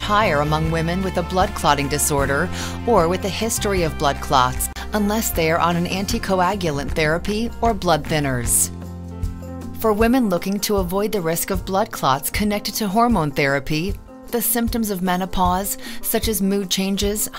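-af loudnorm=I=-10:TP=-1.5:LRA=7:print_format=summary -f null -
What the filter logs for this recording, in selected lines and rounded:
Input Integrated:    -20.1 LUFS
Input True Peak:      -1.4 dBTP
Input LRA:             1.2 LU
Input Threshold:     -30.2 LUFS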